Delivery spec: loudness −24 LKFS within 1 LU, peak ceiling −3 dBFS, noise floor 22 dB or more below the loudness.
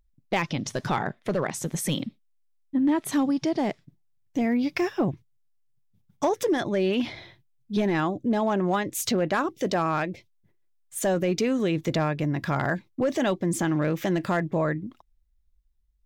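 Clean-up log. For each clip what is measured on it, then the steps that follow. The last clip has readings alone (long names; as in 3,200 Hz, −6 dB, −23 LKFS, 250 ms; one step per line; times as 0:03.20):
share of clipped samples 0.5%; peaks flattened at −17.0 dBFS; integrated loudness −26.5 LKFS; sample peak −17.0 dBFS; target loudness −24.0 LKFS
→ clipped peaks rebuilt −17 dBFS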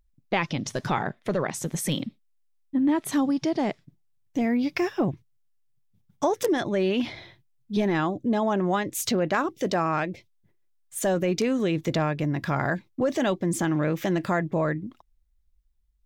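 share of clipped samples 0.0%; integrated loudness −26.5 LKFS; sample peak −8.0 dBFS; target loudness −24.0 LKFS
→ level +2.5 dB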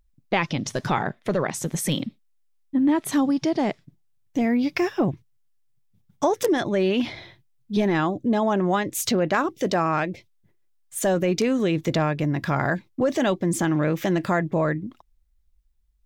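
integrated loudness −24.0 LKFS; sample peak −5.5 dBFS; background noise floor −64 dBFS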